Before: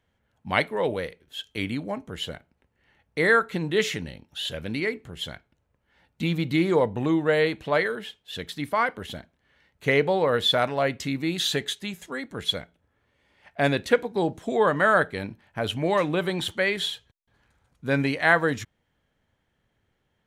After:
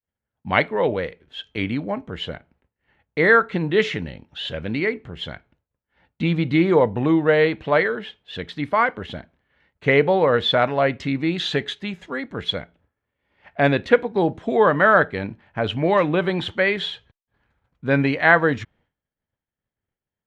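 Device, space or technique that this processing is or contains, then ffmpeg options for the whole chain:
hearing-loss simulation: -af "lowpass=3000,agate=range=-33dB:threshold=-59dB:ratio=3:detection=peak,volume=5dB"

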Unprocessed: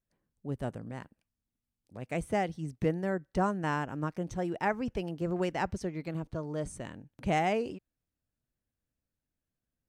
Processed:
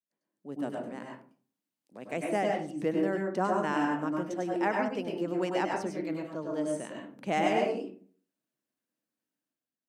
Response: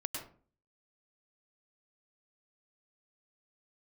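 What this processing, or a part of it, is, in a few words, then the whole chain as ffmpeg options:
far laptop microphone: -filter_complex "[1:a]atrim=start_sample=2205[link_01];[0:a][link_01]afir=irnorm=-1:irlink=0,highpass=frequency=200:width=0.5412,highpass=frequency=200:width=1.3066,dynaudnorm=framelen=130:gausssize=7:maxgain=9dB,volume=-7.5dB"

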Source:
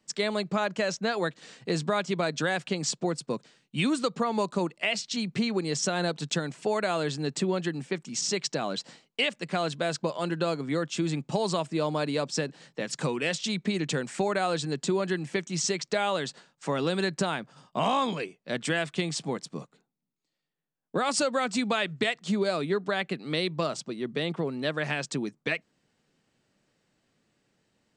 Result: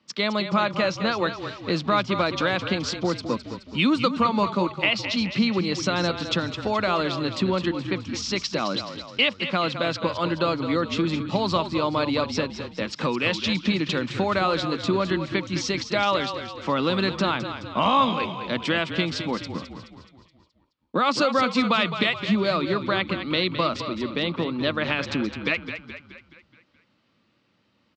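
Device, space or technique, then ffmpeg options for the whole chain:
frequency-shifting delay pedal into a guitar cabinet: -filter_complex "[0:a]asplit=7[link_01][link_02][link_03][link_04][link_05][link_06][link_07];[link_02]adelay=212,afreqshift=-33,volume=-9.5dB[link_08];[link_03]adelay=424,afreqshift=-66,volume=-15.3dB[link_09];[link_04]adelay=636,afreqshift=-99,volume=-21.2dB[link_10];[link_05]adelay=848,afreqshift=-132,volume=-27dB[link_11];[link_06]adelay=1060,afreqshift=-165,volume=-32.9dB[link_12];[link_07]adelay=1272,afreqshift=-198,volume=-38.7dB[link_13];[link_01][link_08][link_09][link_10][link_11][link_12][link_13]amix=inputs=7:normalize=0,highpass=84,equalizer=frequency=150:width_type=q:width=4:gain=-7,equalizer=frequency=420:width_type=q:width=4:gain=-8,equalizer=frequency=720:width_type=q:width=4:gain=-7,equalizer=frequency=1200:width_type=q:width=4:gain=4,equalizer=frequency=1700:width_type=q:width=4:gain=-6,lowpass=frequency=4600:width=0.5412,lowpass=frequency=4600:width=1.3066,volume=7dB"

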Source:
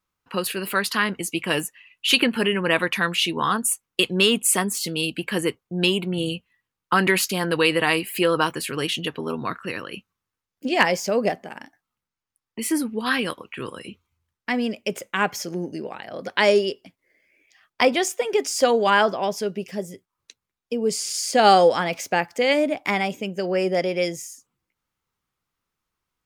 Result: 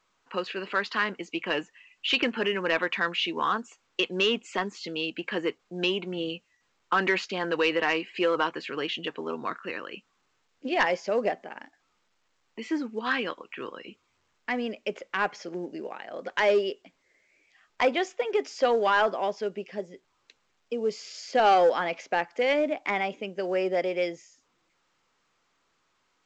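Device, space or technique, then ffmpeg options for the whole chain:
telephone: -af "highpass=290,lowpass=3100,asoftclip=type=tanh:threshold=-10dB,volume=-3dB" -ar 16000 -c:a pcm_alaw

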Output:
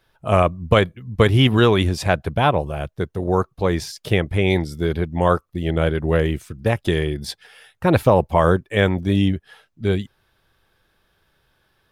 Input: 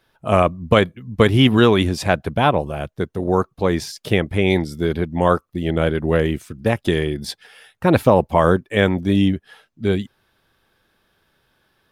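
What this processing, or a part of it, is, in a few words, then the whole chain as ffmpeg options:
low shelf boost with a cut just above: -af "lowshelf=frequency=96:gain=7,equalizer=frequency=240:width_type=o:width=0.73:gain=-4.5,volume=-1dB"

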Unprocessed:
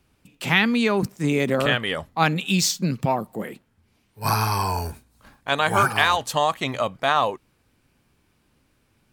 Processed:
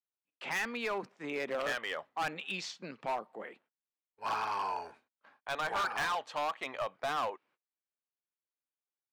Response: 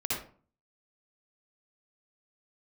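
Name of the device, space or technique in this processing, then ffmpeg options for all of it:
walkie-talkie: -af "highpass=540,lowpass=2600,asoftclip=type=hard:threshold=-21.5dB,agate=range=-28dB:threshold=-58dB:ratio=16:detection=peak,volume=-7.5dB"

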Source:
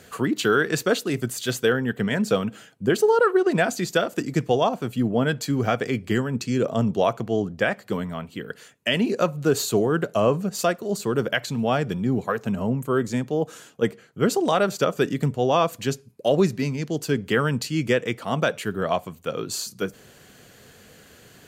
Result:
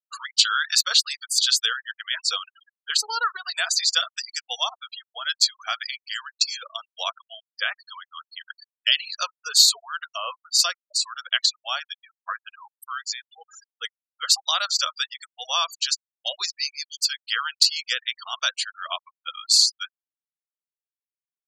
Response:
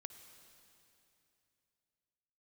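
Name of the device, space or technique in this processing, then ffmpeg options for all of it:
headphones lying on a table: -filter_complex "[0:a]asettb=1/sr,asplit=3[link_01][link_02][link_03];[link_01]atrim=end=12.914[link_04];[link_02]atrim=start=12.91:end=13.36,asetpts=PTS-STARTPTS,afade=type=in:duration=0.004:curve=qsin,afade=type=out:start_time=0.446:duration=0.004:curve=qsin,highpass=frequency=550:poles=1[link_05];[link_03]atrim=start=13.356[link_06];[link_04][link_05]acrossfade=duration=0.004:curve1=hsin:curve2=qsin[link_07];[link_07][link_06]acrossfade=duration=0.004:curve1=qsin:curve2=hsin,highpass=frequency=1200:width=0.5412,highpass=frequency=1200:width=1.3066,equalizer=frequency=4900:width_type=o:width=0.56:gain=7,afftfilt=real='re*gte(hypot(re,im),0.0224)':imag='im*gte(hypot(re,im),0.0224)':win_size=1024:overlap=0.75,equalizer=frequency=500:width_type=o:width=1:gain=6,equalizer=frequency=2000:width_type=o:width=1:gain=-7,equalizer=frequency=4000:width_type=o:width=1:gain=10,equalizer=frequency=8000:width_type=o:width=1:gain=4,volume=2.5dB"

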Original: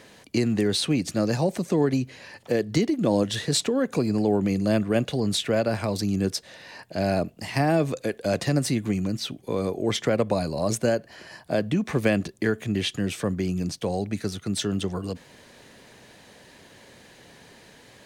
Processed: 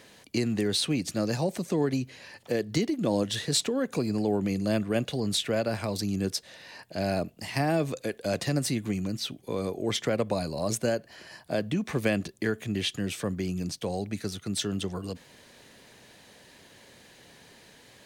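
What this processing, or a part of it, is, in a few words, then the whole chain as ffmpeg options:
presence and air boost: -af "equalizer=frequency=3600:width_type=o:width=1.6:gain=2.5,highshelf=frequency=10000:gain=7,volume=-4.5dB"

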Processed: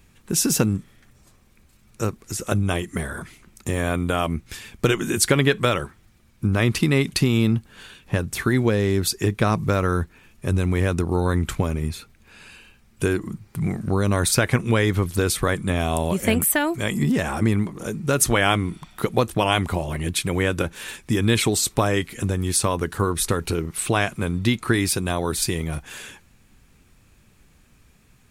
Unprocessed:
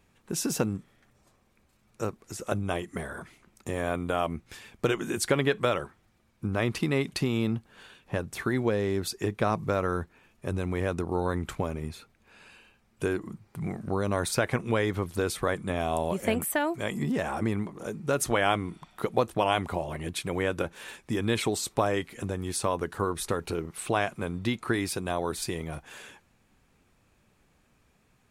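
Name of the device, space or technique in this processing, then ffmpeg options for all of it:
smiley-face EQ: -af "lowshelf=frequency=85:gain=6.5,equalizer=frequency=690:width_type=o:width=1.7:gain=-6,highshelf=frequency=6700:gain=4.5,volume=8.5dB"

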